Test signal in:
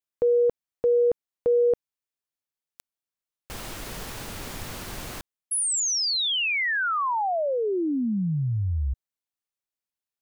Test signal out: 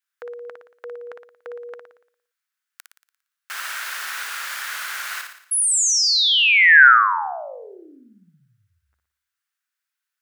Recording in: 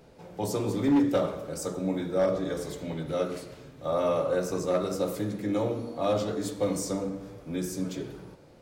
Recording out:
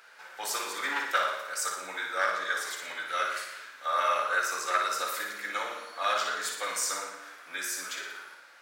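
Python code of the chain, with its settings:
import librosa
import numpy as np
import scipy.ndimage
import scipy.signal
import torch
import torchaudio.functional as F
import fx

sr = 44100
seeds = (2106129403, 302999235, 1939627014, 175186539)

y = fx.highpass_res(x, sr, hz=1500.0, q=3.5)
y = fx.room_flutter(y, sr, wall_m=9.9, rt60_s=0.63)
y = F.gain(torch.from_numpy(y), 5.0).numpy()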